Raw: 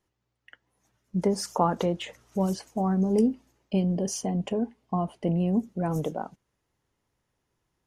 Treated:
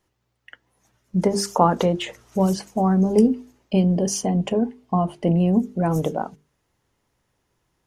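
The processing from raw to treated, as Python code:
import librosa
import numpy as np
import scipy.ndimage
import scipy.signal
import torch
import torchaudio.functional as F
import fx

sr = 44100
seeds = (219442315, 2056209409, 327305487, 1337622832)

y = fx.hum_notches(x, sr, base_hz=50, count=9)
y = y * librosa.db_to_amplitude(7.0)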